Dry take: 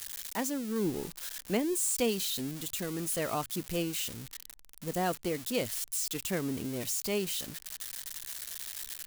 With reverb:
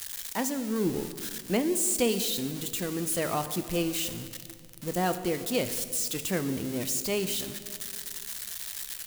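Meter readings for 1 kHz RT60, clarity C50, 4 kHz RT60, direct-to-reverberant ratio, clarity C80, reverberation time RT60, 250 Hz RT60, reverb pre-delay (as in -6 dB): 2.0 s, 11.5 dB, 1.6 s, 9.5 dB, 12.5 dB, 2.2 s, 2.8 s, 6 ms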